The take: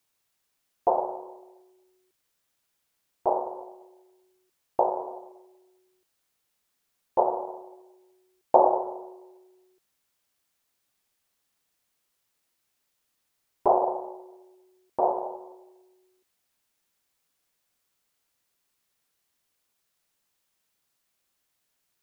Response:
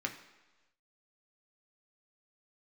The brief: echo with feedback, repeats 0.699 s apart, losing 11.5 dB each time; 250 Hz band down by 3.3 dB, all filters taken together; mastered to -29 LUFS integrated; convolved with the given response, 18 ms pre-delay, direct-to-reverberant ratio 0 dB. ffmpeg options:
-filter_complex "[0:a]equalizer=f=250:t=o:g=-7,aecho=1:1:699|1398|2097:0.266|0.0718|0.0194,asplit=2[a][b];[1:a]atrim=start_sample=2205,adelay=18[c];[b][c]afir=irnorm=-1:irlink=0,volume=-3dB[d];[a][d]amix=inputs=2:normalize=0,volume=-0.5dB"

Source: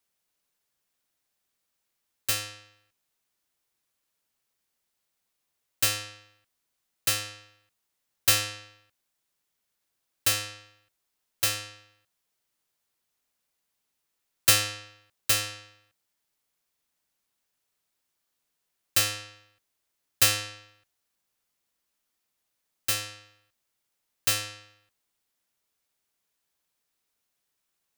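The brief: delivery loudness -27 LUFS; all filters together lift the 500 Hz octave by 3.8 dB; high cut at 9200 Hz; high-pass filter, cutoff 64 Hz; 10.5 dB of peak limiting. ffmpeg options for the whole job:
-af "highpass=64,lowpass=9.2k,equalizer=f=500:t=o:g=4,volume=5dB,alimiter=limit=-13.5dB:level=0:latency=1"

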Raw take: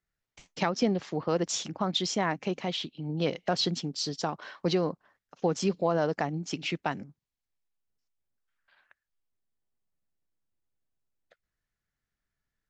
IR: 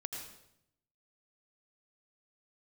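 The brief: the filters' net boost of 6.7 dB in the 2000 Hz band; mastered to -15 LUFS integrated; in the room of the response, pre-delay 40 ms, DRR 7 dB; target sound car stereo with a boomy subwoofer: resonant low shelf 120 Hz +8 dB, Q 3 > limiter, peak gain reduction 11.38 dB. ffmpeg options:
-filter_complex "[0:a]equalizer=f=2k:t=o:g=8.5,asplit=2[a][b];[1:a]atrim=start_sample=2205,adelay=40[c];[b][c]afir=irnorm=-1:irlink=0,volume=-6dB[d];[a][d]amix=inputs=2:normalize=0,lowshelf=f=120:t=q:w=3:g=8,volume=17.5dB,alimiter=limit=-3.5dB:level=0:latency=1"

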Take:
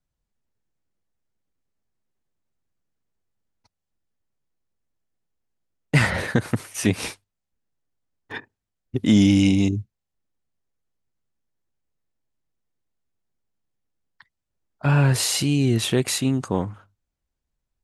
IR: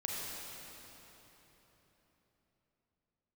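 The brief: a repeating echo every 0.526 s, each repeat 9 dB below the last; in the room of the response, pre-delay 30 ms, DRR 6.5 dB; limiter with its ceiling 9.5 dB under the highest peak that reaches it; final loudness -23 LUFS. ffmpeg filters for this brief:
-filter_complex "[0:a]alimiter=limit=-13dB:level=0:latency=1,aecho=1:1:526|1052|1578|2104:0.355|0.124|0.0435|0.0152,asplit=2[a][b];[1:a]atrim=start_sample=2205,adelay=30[c];[b][c]afir=irnorm=-1:irlink=0,volume=-9.5dB[d];[a][d]amix=inputs=2:normalize=0,volume=0.5dB"

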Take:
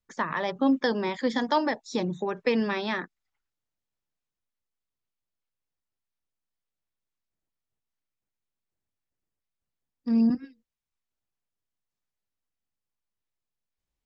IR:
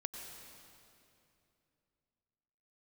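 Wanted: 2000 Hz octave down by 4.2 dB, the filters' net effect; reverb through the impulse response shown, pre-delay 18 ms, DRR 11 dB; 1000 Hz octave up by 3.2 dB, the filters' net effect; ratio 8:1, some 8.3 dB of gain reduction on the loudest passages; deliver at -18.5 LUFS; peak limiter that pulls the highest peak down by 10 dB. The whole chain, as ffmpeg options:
-filter_complex "[0:a]equalizer=f=1k:t=o:g=5,equalizer=f=2k:t=o:g=-6.5,acompressor=threshold=-26dB:ratio=8,alimiter=limit=-23dB:level=0:latency=1,asplit=2[a][b];[1:a]atrim=start_sample=2205,adelay=18[c];[b][c]afir=irnorm=-1:irlink=0,volume=-10dB[d];[a][d]amix=inputs=2:normalize=0,volume=14.5dB"

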